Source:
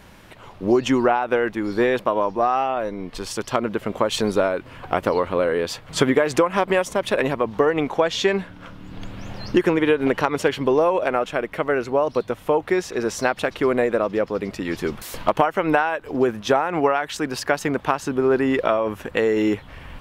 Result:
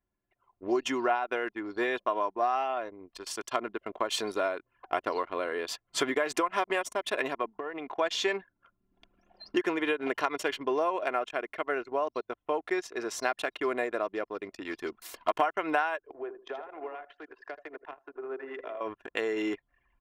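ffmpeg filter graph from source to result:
-filter_complex "[0:a]asettb=1/sr,asplit=3[a][b][c];[a]atrim=end=7.484[d];[b]atrim=start=7.48:end=7.94,asetpts=PTS-STARTPTS,afade=t=in:d=0.004:c=qsin,afade=t=out:st=0.456:d=0.004:c=qsin,lowpass=3.9k,acompressor=threshold=-21dB:ratio=10:attack=3.2:release=140:knee=1:detection=peak[e];[c]atrim=start=7.936[f];[d][e]acrossfade=d=0.004:c1=hsin:c2=qsin[g];[g][f]acrossfade=d=0.004:c1=qsin:c2=hsin,asettb=1/sr,asplit=3[h][i][j];[h]atrim=end=16.114[k];[i]atrim=start=16.11:end=18.81,asetpts=PTS-STARTPTS,afade=t=in:d=0.004:c=qsin,afade=t=out:st=2.696:d=0.004:c=qsin,acrossover=split=410 2500:gain=0.0794 1 0.1[l][m][n];[l][m][n]amix=inputs=3:normalize=0,acrossover=split=460|3000[o][p][q];[p]acompressor=threshold=-35dB:ratio=8:attack=3.2:release=140:knee=2.83:detection=peak[r];[o][r][q]amix=inputs=3:normalize=0,aecho=1:1:80|160|240|320|400|480:0.398|0.203|0.104|0.0528|0.0269|0.0137,atrim=end_sample=119070[s];[j]atrim=start=18.806[t];[k][s]acrossfade=d=0.004:c1=hsin:c2=qsin[u];[u][t]acrossfade=d=0.004:c1=qsin:c2=hsin,highpass=f=690:p=1,anlmdn=6.31,aecho=1:1:2.9:0.44,volume=-6.5dB"

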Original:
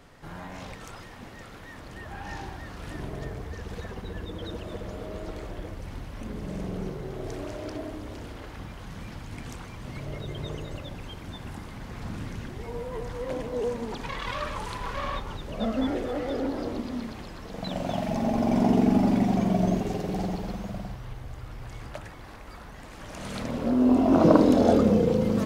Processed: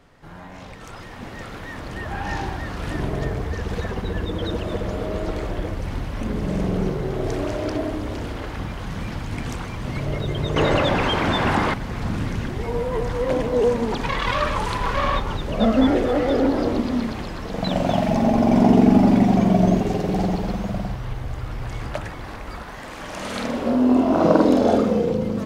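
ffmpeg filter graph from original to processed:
-filter_complex "[0:a]asettb=1/sr,asplit=3[a][b][c];[a]atrim=end=10.564[d];[b]atrim=start=10.56:end=11.74,asetpts=PTS-STARTPTS,afade=t=in:d=0.004:c=qsin,afade=t=out:st=1.176:d=0.004:c=qsin,acontrast=58,asplit=2[e][f];[f]highpass=f=720:p=1,volume=19dB,asoftclip=type=tanh:threshold=-17dB[g];[e][g]amix=inputs=2:normalize=0,lowpass=f=1.6k:p=1,volume=-6dB[h];[c]atrim=start=11.736[i];[d][h]acrossfade=d=0.004:c1=hsin:c2=qsin[j];[j][i]acrossfade=d=0.004:c1=qsin:c2=hsin,asettb=1/sr,asplit=3[k][l][m];[k]atrim=end=22.634[n];[l]atrim=start=22.63:end=25.1,asetpts=PTS-STARTPTS,afade=t=in:d=0.004:c=qsin,afade=t=out:st=2.466:d=0.004:c=qsin,lowshelf=f=220:g=-9.5,bandreject=f=50:t=h:w=6,bandreject=f=100:t=h:w=6,asplit=2[o][p];[p]adelay=47,volume=-3.5dB[q];[o][q]amix=inputs=2:normalize=0,atrim=end_sample=108927[r];[m]atrim=start=25.096[s];[n][r]acrossfade=d=0.004:c1=hsin:c2=qsin[t];[t][s]acrossfade=d=0.004:c1=qsin:c2=hsin,highshelf=f=5.7k:g=-5.5,dynaudnorm=f=710:g=3:m=11.5dB,volume=-1dB"

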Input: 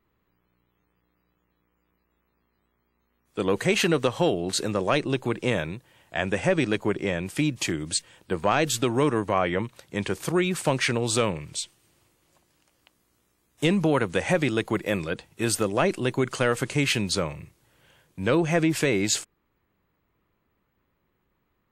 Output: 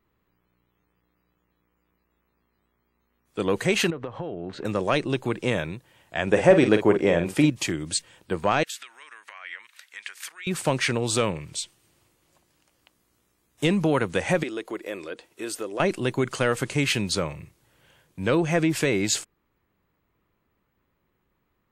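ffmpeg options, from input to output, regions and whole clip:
-filter_complex "[0:a]asettb=1/sr,asplit=3[a][b][c];[a]atrim=end=3.904[d];[b]atrim=start=3.9:end=4.65,asetpts=PTS-STARTPTS,afade=t=in:d=0.004:c=qsin,afade=t=out:st=0.746:d=0.004:c=qsin,lowpass=1.7k,acompressor=threshold=-29dB:ratio=5:attack=3.2:release=140:knee=1:detection=peak[e];[c]atrim=start=4.646[f];[d][e]acrossfade=d=0.004:c1=hsin:c2=qsin[g];[g][f]acrossfade=d=0.004:c1=qsin:c2=hsin,asettb=1/sr,asplit=3[h][i][j];[h]atrim=end=6.274[k];[i]atrim=start=6.27:end=7.5,asetpts=PTS-STARTPTS,afade=t=in:d=0.004:c=qsin,afade=t=out:st=1.226:d=0.004:c=qsin,equalizer=f=550:t=o:w=2.4:g=8,asplit=2[l][m];[m]adelay=47,volume=-8.5dB[n];[l][n]amix=inputs=2:normalize=0,atrim=end_sample=54243[o];[j]atrim=start=7.496[p];[k][o]acrossfade=d=0.004:c1=hsin:c2=qsin[q];[q][p]acrossfade=d=0.004:c1=qsin:c2=hsin,asettb=1/sr,asplit=3[r][s][t];[r]atrim=end=8.634[u];[s]atrim=start=8.63:end=10.47,asetpts=PTS-STARTPTS,afade=t=in:d=0.004:c=qsin,afade=t=out:st=1.836:d=0.004:c=qsin,acompressor=threshold=-31dB:ratio=12:attack=3.2:release=140:knee=1:detection=peak,highpass=f=1.8k:t=q:w=2[v];[t]atrim=start=10.466[w];[u][v]acrossfade=d=0.004:c1=hsin:c2=qsin[x];[x][w]acrossfade=d=0.004:c1=qsin:c2=hsin,asettb=1/sr,asplit=3[y][z][aa];[y]atrim=end=14.434[ab];[z]atrim=start=14.43:end=15.8,asetpts=PTS-STARTPTS,afade=t=in:d=0.004:c=qsin,afade=t=out:st=1.366:d=0.004:c=qsin,lowshelf=f=220:t=q:w=1.5:g=-14,bandreject=f=820:w=11,acompressor=threshold=-42dB:ratio=1.5:attack=3.2:release=140:knee=1:detection=peak[ac];[aa]atrim=start=15.796[ad];[ab][ac]acrossfade=d=0.004:c1=hsin:c2=qsin[ae];[ae][ad]acrossfade=d=0.004:c1=qsin:c2=hsin"

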